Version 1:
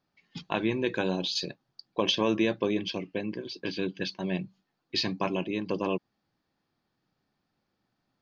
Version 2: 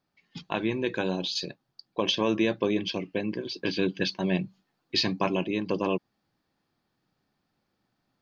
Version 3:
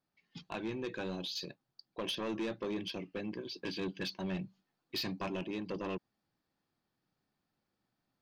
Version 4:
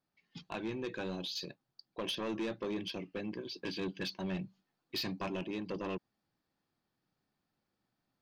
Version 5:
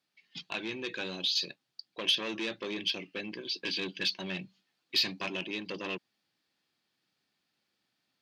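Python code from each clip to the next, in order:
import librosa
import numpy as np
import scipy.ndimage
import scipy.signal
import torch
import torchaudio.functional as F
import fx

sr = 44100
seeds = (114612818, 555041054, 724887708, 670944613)

y1 = fx.rider(x, sr, range_db=10, speed_s=2.0)
y1 = y1 * librosa.db_to_amplitude(1.5)
y2 = 10.0 ** (-23.5 / 20.0) * np.tanh(y1 / 10.0 ** (-23.5 / 20.0))
y2 = y2 * librosa.db_to_amplitude(-7.5)
y3 = y2
y4 = fx.weighting(y3, sr, curve='D')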